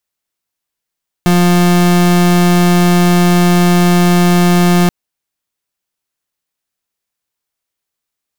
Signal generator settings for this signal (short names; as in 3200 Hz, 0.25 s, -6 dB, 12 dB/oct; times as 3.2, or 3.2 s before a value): pulse 176 Hz, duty 36% -9 dBFS 3.63 s